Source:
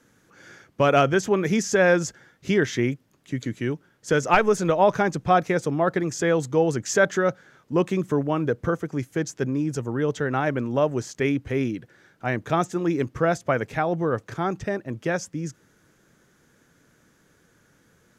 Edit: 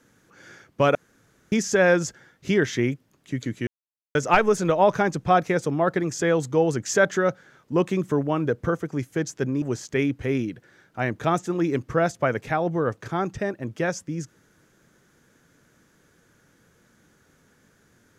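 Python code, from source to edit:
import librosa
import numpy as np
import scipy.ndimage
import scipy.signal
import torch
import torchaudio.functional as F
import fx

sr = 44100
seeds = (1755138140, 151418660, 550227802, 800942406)

y = fx.edit(x, sr, fx.room_tone_fill(start_s=0.95, length_s=0.57),
    fx.silence(start_s=3.67, length_s=0.48),
    fx.cut(start_s=9.62, length_s=1.26), tone=tone)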